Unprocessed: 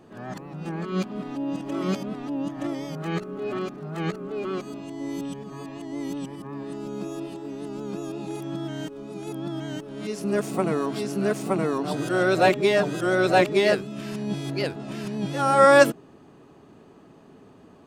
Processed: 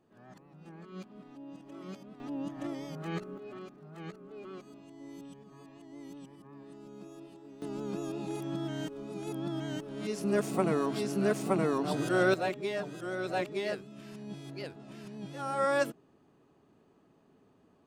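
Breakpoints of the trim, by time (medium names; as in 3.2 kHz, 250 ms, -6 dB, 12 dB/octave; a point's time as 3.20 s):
-18 dB
from 2.20 s -8 dB
from 3.38 s -15.5 dB
from 7.62 s -4 dB
from 12.34 s -14 dB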